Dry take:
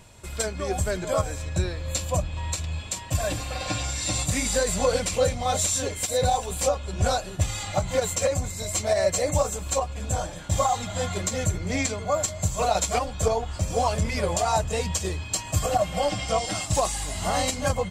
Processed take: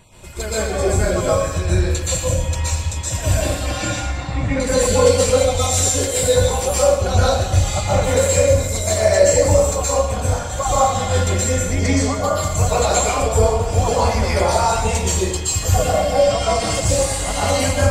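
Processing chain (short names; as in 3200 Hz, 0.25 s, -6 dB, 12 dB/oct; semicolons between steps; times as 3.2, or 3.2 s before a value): random spectral dropouts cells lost 22%; 3.88–4.6 LPF 1800 Hz 12 dB/oct; plate-style reverb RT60 1 s, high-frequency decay 0.8×, pre-delay 0.11 s, DRR -8.5 dB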